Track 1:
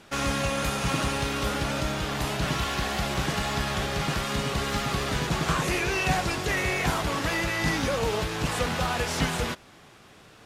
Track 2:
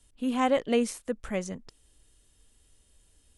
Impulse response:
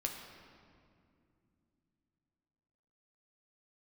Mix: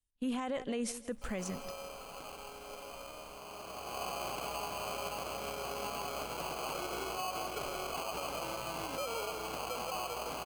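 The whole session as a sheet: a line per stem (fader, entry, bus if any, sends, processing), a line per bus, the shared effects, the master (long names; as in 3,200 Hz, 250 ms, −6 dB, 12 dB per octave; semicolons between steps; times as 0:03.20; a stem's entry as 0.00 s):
−1.5 dB, 1.10 s, no send, echo send −9.5 dB, resonant band-pass 630 Hz, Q 1.6; mains hum 60 Hz, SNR 10 dB; decimation without filtering 24×; automatic ducking −18 dB, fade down 1.75 s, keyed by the second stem
−1.0 dB, 0.00 s, no send, echo send −20.5 dB, low-shelf EQ 220 Hz +11 dB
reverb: not used
echo: repeating echo 162 ms, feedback 33%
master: low-shelf EQ 390 Hz −9 dB; noise gate −51 dBFS, range −26 dB; brickwall limiter −27.5 dBFS, peak gain reduction 12.5 dB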